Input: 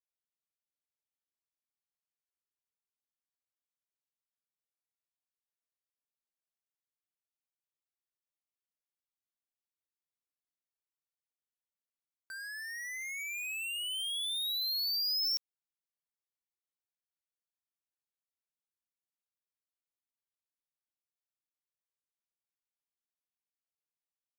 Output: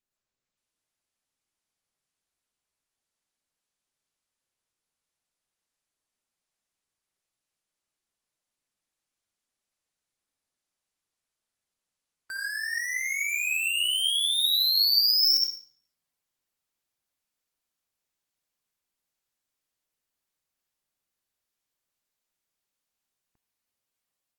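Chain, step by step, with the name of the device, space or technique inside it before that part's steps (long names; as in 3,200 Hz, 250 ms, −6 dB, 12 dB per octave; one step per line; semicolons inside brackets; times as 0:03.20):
speakerphone in a meeting room (convolution reverb RT60 0.55 s, pre-delay 51 ms, DRR 0.5 dB; automatic gain control gain up to 8 dB; Opus 20 kbit/s 48,000 Hz)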